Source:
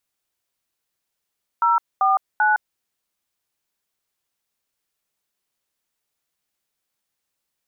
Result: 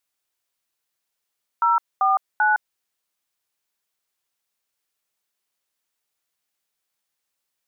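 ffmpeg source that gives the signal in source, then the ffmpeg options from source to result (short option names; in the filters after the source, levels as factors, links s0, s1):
-f lavfi -i "aevalsrc='0.141*clip(min(mod(t,0.39),0.161-mod(t,0.39))/0.002,0,1)*(eq(floor(t/0.39),0)*(sin(2*PI*941*mod(t,0.39))+sin(2*PI*1336*mod(t,0.39)))+eq(floor(t/0.39),1)*(sin(2*PI*770*mod(t,0.39))+sin(2*PI*1209*mod(t,0.39)))+eq(floor(t/0.39),2)*(sin(2*PI*852*mod(t,0.39))+sin(2*PI*1477*mod(t,0.39))))':d=1.17:s=44100"
-af "lowshelf=f=370:g=-7"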